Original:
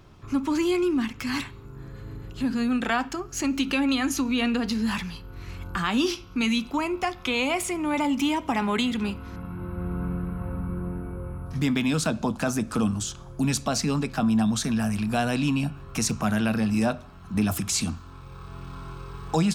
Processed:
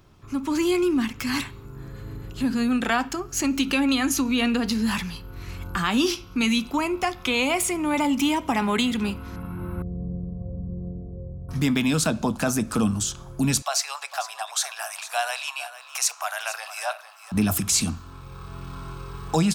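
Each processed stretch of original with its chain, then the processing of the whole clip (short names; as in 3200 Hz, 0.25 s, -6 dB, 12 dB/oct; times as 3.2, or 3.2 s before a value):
9.82–11.49 Gaussian blur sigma 17 samples + low shelf 120 Hz -9.5 dB + comb 1.7 ms, depth 68%
13.62–17.32 steep high-pass 650 Hz 48 dB/oct + echo 0.453 s -14 dB
whole clip: high shelf 8000 Hz +8 dB; AGC gain up to 6 dB; gain -4 dB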